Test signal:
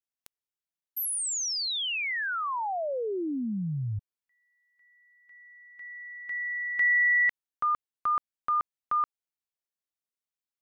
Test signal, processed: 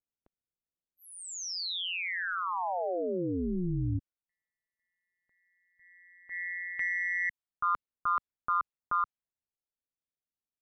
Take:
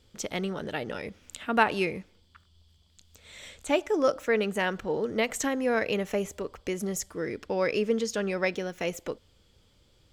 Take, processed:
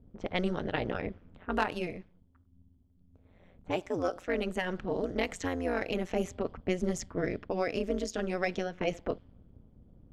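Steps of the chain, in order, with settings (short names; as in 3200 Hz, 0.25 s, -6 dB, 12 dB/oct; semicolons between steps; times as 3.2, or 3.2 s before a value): low shelf 130 Hz +8.5 dB; soft clip -11.5 dBFS; AM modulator 180 Hz, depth 90%; low-pass opened by the level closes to 610 Hz, open at -26.5 dBFS; vocal rider within 5 dB 0.5 s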